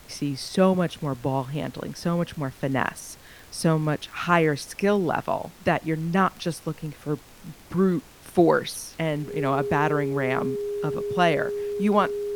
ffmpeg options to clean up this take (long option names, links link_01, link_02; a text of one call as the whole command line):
ffmpeg -i in.wav -af "adeclick=threshold=4,bandreject=frequency=410:width=30,afftdn=noise_reduction=21:noise_floor=-48" out.wav